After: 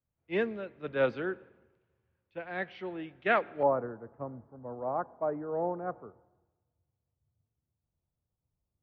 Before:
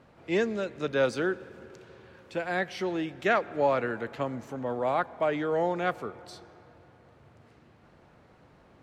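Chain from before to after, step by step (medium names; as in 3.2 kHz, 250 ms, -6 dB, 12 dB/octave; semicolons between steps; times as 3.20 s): low-pass 3.1 kHz 24 dB/octave, from 3.63 s 1.2 kHz; three bands expanded up and down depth 100%; trim -6.5 dB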